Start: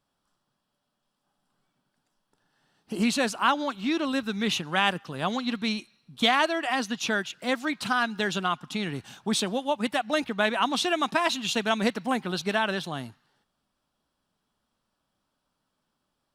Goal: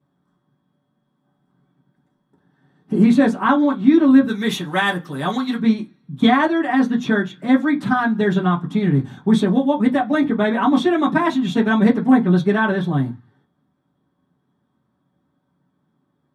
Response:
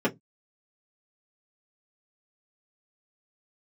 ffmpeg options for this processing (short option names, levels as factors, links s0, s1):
-filter_complex "[0:a]asplit=3[s0][s1][s2];[s0]afade=t=out:st=4.27:d=0.02[s3];[s1]aemphasis=mode=production:type=riaa,afade=t=in:st=4.27:d=0.02,afade=t=out:st=5.58:d=0.02[s4];[s2]afade=t=in:st=5.58:d=0.02[s5];[s3][s4][s5]amix=inputs=3:normalize=0[s6];[1:a]atrim=start_sample=2205,asetrate=28224,aresample=44100[s7];[s6][s7]afir=irnorm=-1:irlink=0,volume=0.398"